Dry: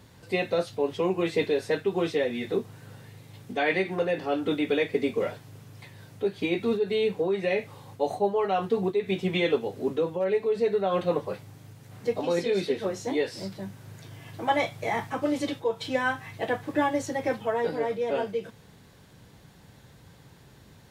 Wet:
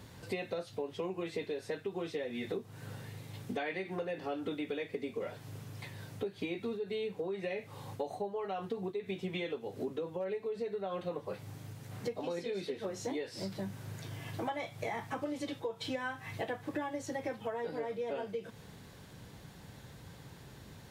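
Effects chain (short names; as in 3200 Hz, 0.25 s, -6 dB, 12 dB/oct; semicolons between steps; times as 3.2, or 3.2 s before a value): compressor 12:1, threshold -35 dBFS, peak gain reduction 17 dB; gain +1 dB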